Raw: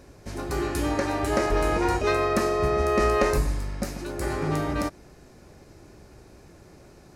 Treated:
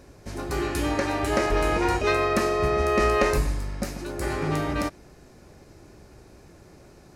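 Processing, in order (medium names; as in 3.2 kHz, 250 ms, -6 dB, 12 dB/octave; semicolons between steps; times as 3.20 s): dynamic bell 2.7 kHz, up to +4 dB, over -42 dBFS, Q 1.1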